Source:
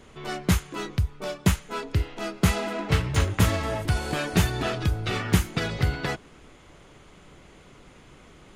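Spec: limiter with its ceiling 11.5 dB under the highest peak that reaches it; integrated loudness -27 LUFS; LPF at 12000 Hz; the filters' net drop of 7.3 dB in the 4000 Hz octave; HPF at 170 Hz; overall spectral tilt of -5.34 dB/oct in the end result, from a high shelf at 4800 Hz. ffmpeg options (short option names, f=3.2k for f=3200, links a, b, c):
-af "highpass=170,lowpass=12k,equalizer=f=4k:t=o:g=-7.5,highshelf=f=4.8k:g=-5,volume=7dB,alimiter=limit=-15.5dB:level=0:latency=1"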